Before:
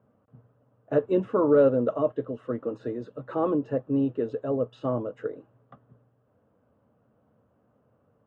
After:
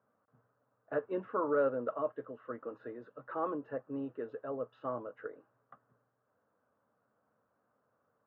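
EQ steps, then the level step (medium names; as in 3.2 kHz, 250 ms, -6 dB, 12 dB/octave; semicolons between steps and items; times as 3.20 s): band-pass filter 1.5 kHz, Q 1.7; tilt EQ -2.5 dB/octave; 0.0 dB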